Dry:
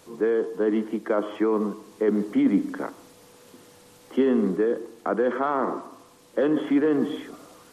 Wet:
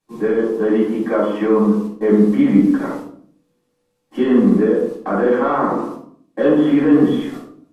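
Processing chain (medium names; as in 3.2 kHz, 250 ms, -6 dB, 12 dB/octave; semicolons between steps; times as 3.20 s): gate -42 dBFS, range -28 dB; reverberation RT60 0.55 s, pre-delay 4 ms, DRR -8 dB; trim -3.5 dB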